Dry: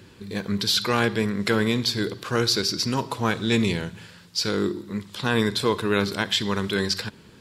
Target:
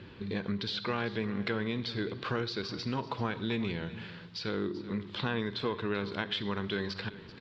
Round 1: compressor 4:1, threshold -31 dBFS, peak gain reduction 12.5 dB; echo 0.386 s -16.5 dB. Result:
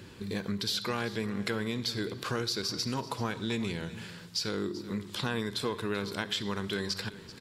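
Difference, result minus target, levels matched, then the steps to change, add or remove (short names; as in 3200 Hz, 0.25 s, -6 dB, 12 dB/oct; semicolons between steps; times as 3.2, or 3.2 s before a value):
4000 Hz band +2.5 dB
add after compressor: LPF 3900 Hz 24 dB/oct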